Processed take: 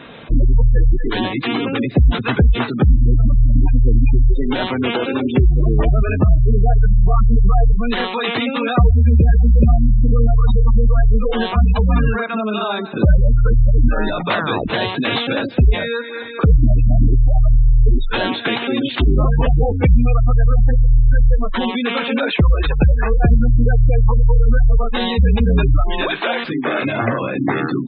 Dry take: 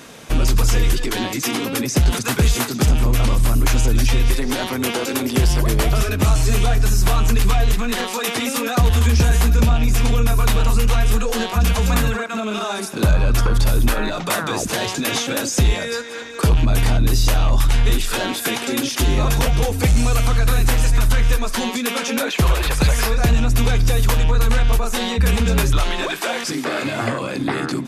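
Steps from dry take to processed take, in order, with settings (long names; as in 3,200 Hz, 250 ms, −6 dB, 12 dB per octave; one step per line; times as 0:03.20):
Butterworth low-pass 4,100 Hz 72 dB per octave
gate on every frequency bin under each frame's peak −20 dB strong
level +3.5 dB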